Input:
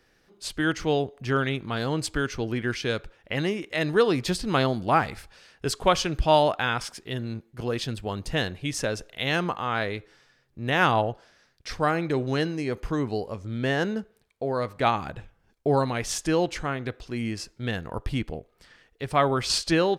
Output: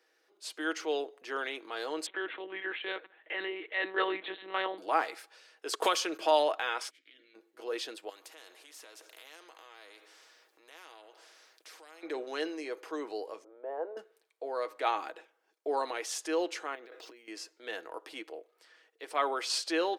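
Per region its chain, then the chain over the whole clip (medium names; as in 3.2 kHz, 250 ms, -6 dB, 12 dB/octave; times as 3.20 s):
2.06–4.78 s: peaking EQ 1.8 kHz +6 dB 0.54 oct + monotone LPC vocoder at 8 kHz 190 Hz
5.73–6.31 s: gate -37 dBFS, range -28 dB + treble shelf 7.7 kHz +8 dB + three bands compressed up and down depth 100%
6.89–7.34 s: spectral peaks clipped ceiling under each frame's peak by 23 dB + compression 5:1, threshold -35 dBFS + vowel filter i
8.09–12.03 s: compression 5:1, threshold -40 dBFS + spectrum-flattening compressor 2:1
13.44–13.97 s: Butterworth band-pass 680 Hz, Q 1.3 + tilt EQ -2 dB/octave
16.75–17.28 s: compressor with a negative ratio -41 dBFS + decimation joined by straight lines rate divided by 2×
whole clip: steep high-pass 340 Hz 36 dB/octave; comb 6.3 ms, depth 38%; transient shaper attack -2 dB, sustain +3 dB; trim -7 dB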